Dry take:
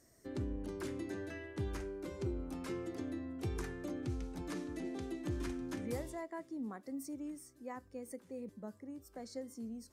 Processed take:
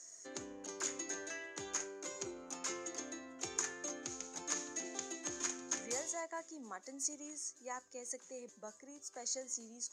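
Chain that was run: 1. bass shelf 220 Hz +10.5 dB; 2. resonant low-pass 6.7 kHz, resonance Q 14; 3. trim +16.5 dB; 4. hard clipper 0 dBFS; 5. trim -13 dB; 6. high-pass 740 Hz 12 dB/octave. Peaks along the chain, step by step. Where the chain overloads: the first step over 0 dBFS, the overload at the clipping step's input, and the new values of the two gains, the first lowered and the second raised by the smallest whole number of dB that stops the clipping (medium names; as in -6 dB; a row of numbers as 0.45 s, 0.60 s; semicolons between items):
-21.0 dBFS, -19.5 dBFS, -3.0 dBFS, -3.0 dBFS, -16.0 dBFS, -19.0 dBFS; nothing clips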